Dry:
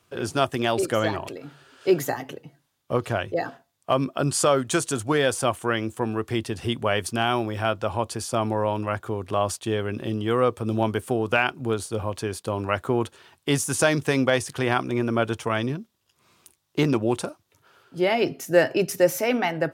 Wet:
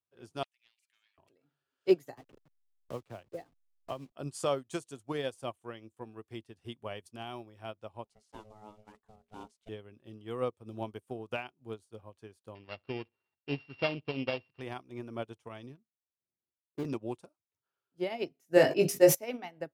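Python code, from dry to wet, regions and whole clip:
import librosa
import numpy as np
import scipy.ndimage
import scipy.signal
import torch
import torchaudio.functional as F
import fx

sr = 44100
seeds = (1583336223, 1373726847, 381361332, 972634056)

y = fx.chain(x, sr, fx.ladder_highpass(hz=2000.0, resonance_pct=50),
    fx.doppler_dist(depth_ms=0.53), at=(0.43, 1.18))
y = fx.chain(y, sr, fx.delta_hold(step_db=-33.5),
    fx.high_shelf(hz=11000.0, db=-11.0),
    fx.band_squash(depth_pct=70), at=(2.17, 4.12))
y = fx.chain(y, sr, fx.block_float(bits=5),
    fx.lowpass(hz=8700.0, slope=12),
    fx.ring_mod(carrier_hz=320.0), at=(8.04, 9.69))
y = fx.chain(y, sr, fx.sample_sort(block=16),
    fx.steep_lowpass(hz=4900.0, slope=96),
    fx.echo_feedback(ms=65, feedback_pct=28, wet_db=-21.0), at=(12.55, 14.61))
y = fx.chain(y, sr, fx.median_filter(points=41),
    fx.hum_notches(base_hz=50, count=3), at=(15.76, 16.85))
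y = fx.chain(y, sr, fx.doubler(ms=20.0, db=-3.5),
    fx.sustainer(db_per_s=54.0), at=(18.55, 19.15))
y = fx.dynamic_eq(y, sr, hz=1500.0, q=2.2, threshold_db=-41.0, ratio=4.0, max_db=-7)
y = fx.upward_expand(y, sr, threshold_db=-35.0, expansion=2.5)
y = y * 10.0 ** (-1.5 / 20.0)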